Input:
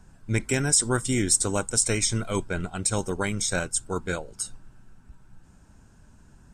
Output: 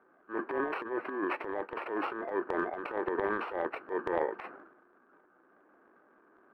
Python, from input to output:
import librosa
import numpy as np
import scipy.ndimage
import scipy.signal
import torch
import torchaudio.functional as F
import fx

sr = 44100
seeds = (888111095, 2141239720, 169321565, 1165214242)

y = fx.bit_reversed(x, sr, seeds[0], block=32)
y = fx.rider(y, sr, range_db=5, speed_s=0.5)
y = scipy.signal.sosfilt(scipy.signal.ellip(3, 1.0, 60, [340.0, 1600.0], 'bandpass', fs=sr, output='sos'), y)
y = fx.transient(y, sr, attack_db=-7, sustain_db=12)